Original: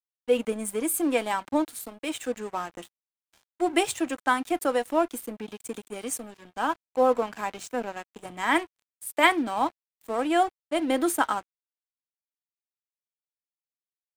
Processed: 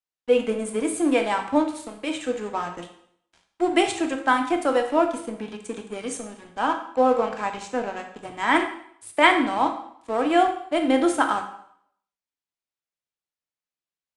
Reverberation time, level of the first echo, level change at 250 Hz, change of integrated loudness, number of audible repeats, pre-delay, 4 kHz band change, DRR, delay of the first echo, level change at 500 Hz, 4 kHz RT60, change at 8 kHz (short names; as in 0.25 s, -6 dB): 0.65 s, none, +4.5 dB, +4.0 dB, none, 6 ms, +3.5 dB, 5.0 dB, none, +4.0 dB, 0.60 s, -2.5 dB